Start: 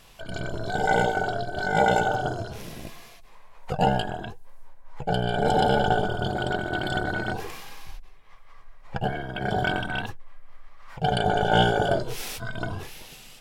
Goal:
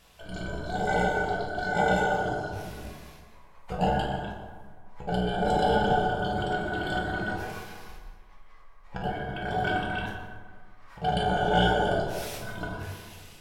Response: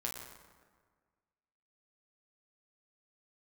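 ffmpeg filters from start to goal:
-filter_complex "[1:a]atrim=start_sample=2205[s0];[0:a][s0]afir=irnorm=-1:irlink=0,volume=0.631"

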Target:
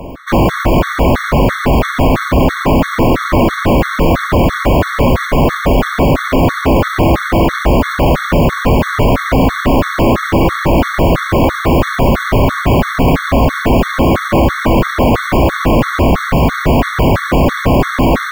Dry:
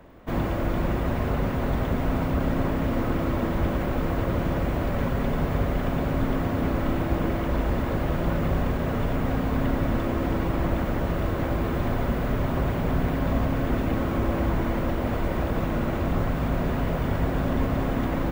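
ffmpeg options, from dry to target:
-af "acontrast=52,apsyclip=12.6,afftfilt=real='re*gt(sin(2*PI*3*pts/sr)*(1-2*mod(floor(b*sr/1024/1100),2)),0)':imag='im*gt(sin(2*PI*3*pts/sr)*(1-2*mod(floor(b*sr/1024/1100),2)),0)':win_size=1024:overlap=0.75,volume=0.596"

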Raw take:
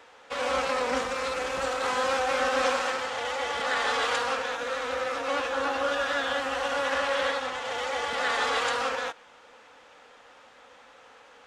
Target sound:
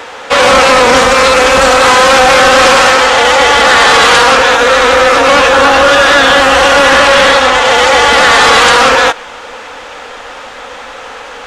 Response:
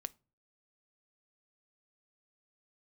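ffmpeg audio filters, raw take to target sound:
-af "asubboost=boost=3:cutoff=65,apsyclip=25.1,volume=0.841"

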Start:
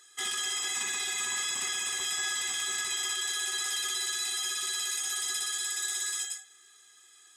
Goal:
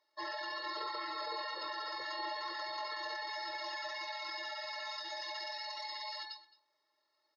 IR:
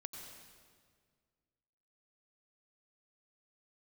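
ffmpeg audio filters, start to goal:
-filter_complex "[0:a]afftdn=nr=18:nf=-40,acrossover=split=500 2200:gain=0.0708 1 0.2[s0][s1][s2];[s0][s1][s2]amix=inputs=3:normalize=0,asplit=2[s3][s4];[s4]acompressor=threshold=0.00158:ratio=6,volume=0.75[s5];[s3][s5]amix=inputs=2:normalize=0,afreqshift=-190,asetrate=25476,aresample=44100,atempo=1.73107,highpass=250,equalizer=f=270:t=q:w=4:g=7,equalizer=f=410:t=q:w=4:g=7,equalizer=f=750:t=q:w=4:g=-9,equalizer=f=1200:t=q:w=4:g=7,equalizer=f=5500:t=q:w=4:g=8,lowpass=f=8300:w=0.5412,lowpass=f=8300:w=1.3066,aecho=1:1:217:0.0944"

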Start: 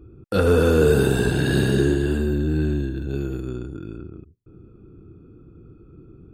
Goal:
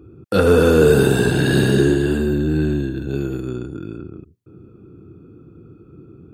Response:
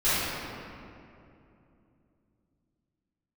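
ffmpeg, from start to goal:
-af "highpass=95,volume=1.68"

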